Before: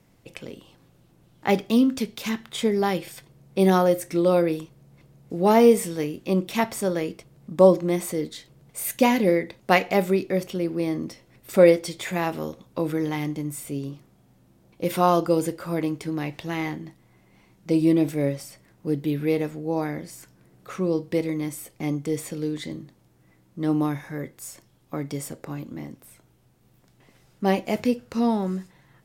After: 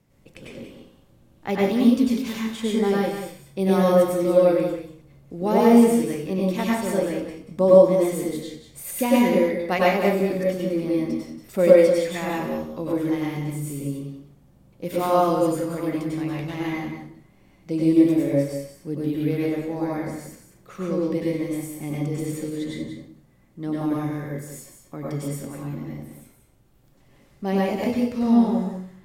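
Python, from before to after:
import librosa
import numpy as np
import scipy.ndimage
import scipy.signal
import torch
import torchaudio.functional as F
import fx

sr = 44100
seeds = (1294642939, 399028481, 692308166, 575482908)

p1 = fx.low_shelf(x, sr, hz=390.0, db=4.0)
p2 = p1 + fx.echo_single(p1, sr, ms=185, db=-9.0, dry=0)
p3 = fx.rev_plate(p2, sr, seeds[0], rt60_s=0.5, hf_ratio=0.85, predelay_ms=85, drr_db=-5.0)
y = p3 * 10.0 ** (-7.5 / 20.0)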